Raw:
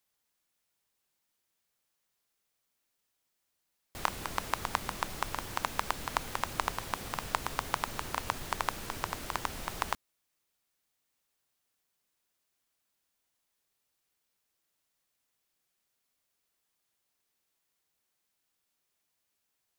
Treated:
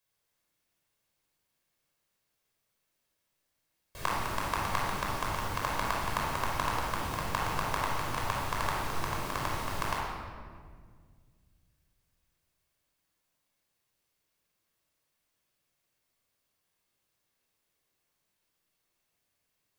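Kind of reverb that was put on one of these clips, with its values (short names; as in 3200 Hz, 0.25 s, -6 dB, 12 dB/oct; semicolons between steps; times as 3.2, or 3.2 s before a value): shoebox room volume 2600 m³, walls mixed, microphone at 5.4 m; gain -5.5 dB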